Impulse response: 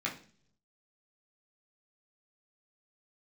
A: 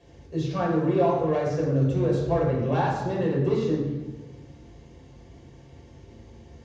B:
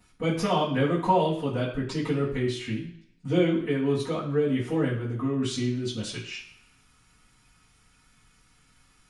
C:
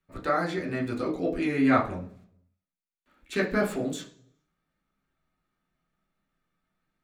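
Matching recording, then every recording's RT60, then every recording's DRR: C; 1.2 s, 0.70 s, 0.50 s; -4.0 dB, -13.0 dB, -3.5 dB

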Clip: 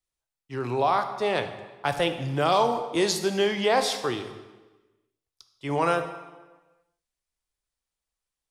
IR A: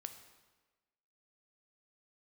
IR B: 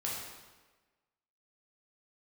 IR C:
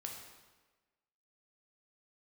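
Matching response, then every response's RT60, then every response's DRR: A; 1.3 s, 1.3 s, 1.3 s; 7.5 dB, -5.0 dB, 0.5 dB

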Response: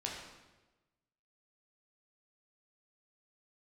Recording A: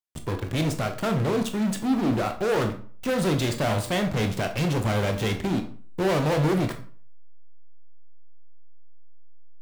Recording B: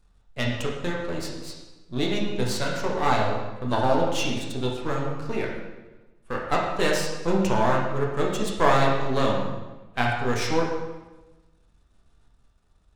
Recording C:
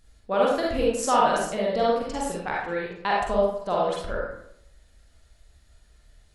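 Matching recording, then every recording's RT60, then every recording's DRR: B; 0.45 s, 1.1 s, 0.75 s; 5.5 dB, -2.5 dB, -4.5 dB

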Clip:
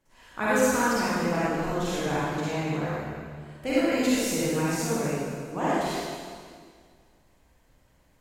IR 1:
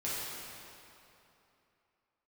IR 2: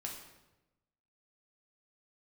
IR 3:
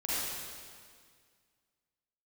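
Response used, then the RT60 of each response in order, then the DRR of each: 3; 2.9 s, 1.0 s, 1.9 s; -9.5 dB, -1.0 dB, -10.0 dB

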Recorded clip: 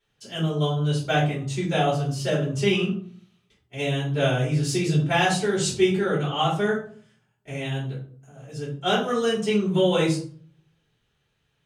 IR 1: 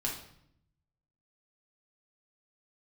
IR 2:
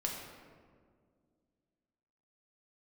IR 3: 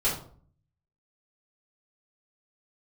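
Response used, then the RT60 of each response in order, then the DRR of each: 3; 0.70 s, 2.0 s, 0.50 s; -2.5 dB, -1.0 dB, -8.5 dB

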